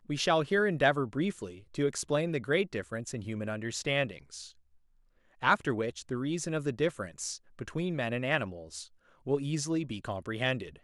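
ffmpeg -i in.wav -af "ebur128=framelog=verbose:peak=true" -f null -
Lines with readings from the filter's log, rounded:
Integrated loudness:
  I:         -31.7 LUFS
  Threshold: -42.1 LUFS
Loudness range:
  LRA:         3.3 LU
  Threshold: -53.1 LUFS
  LRA low:   -34.3 LUFS
  LRA high:  -31.0 LUFS
True peak:
  Peak:      -11.0 dBFS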